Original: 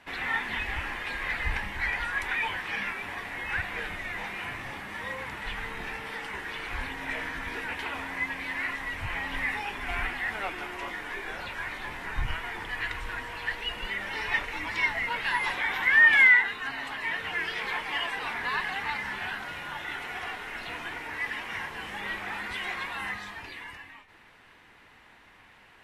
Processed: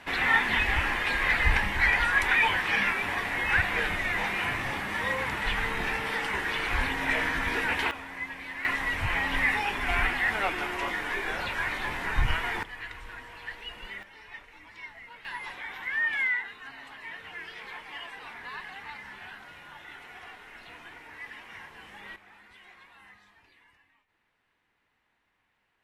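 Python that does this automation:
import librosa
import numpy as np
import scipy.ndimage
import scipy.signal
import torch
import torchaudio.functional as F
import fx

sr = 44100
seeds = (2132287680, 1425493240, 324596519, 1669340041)

y = fx.gain(x, sr, db=fx.steps((0.0, 6.5), (7.91, -5.0), (8.65, 5.0), (12.63, -7.5), (14.03, -17.0), (15.25, -10.0), (22.16, -19.5)))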